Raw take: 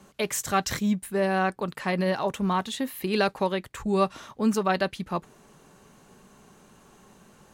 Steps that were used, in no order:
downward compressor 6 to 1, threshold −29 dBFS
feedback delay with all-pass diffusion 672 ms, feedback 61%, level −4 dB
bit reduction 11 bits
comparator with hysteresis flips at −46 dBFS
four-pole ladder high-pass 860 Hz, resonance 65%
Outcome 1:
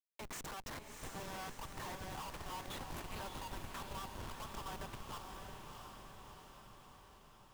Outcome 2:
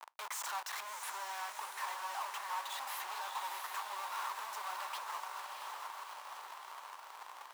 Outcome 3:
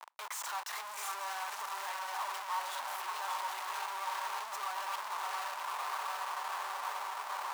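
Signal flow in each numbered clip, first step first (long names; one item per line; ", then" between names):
downward compressor, then four-pole ladder high-pass, then comparator with hysteresis, then bit reduction, then feedback delay with all-pass diffusion
comparator with hysteresis, then feedback delay with all-pass diffusion, then downward compressor, then bit reduction, then four-pole ladder high-pass
feedback delay with all-pass diffusion, then comparator with hysteresis, then bit reduction, then downward compressor, then four-pole ladder high-pass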